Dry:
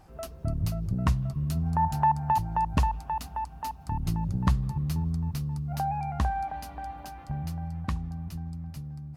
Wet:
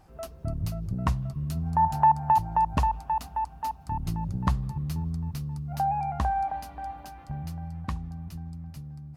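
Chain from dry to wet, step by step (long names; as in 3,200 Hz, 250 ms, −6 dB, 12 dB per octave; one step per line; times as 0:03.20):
dynamic equaliser 810 Hz, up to +6 dB, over −40 dBFS, Q 1.1
level −2 dB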